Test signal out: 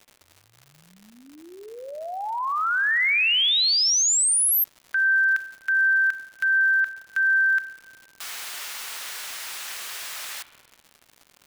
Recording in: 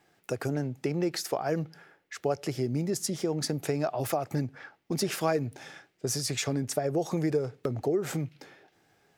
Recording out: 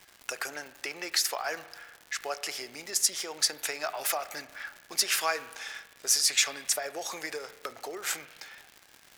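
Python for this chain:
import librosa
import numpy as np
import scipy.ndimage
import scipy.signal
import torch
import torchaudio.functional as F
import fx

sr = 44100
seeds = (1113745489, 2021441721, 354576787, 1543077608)

y = scipy.signal.sosfilt(scipy.signal.butter(2, 1400.0, 'highpass', fs=sr, output='sos'), x)
y = fx.dmg_crackle(y, sr, seeds[0], per_s=190.0, level_db=-46.0)
y = fx.rev_spring(y, sr, rt60_s=1.3, pass_ms=(33,), chirp_ms=40, drr_db=13.5)
y = y * 10.0 ** (8.5 / 20.0)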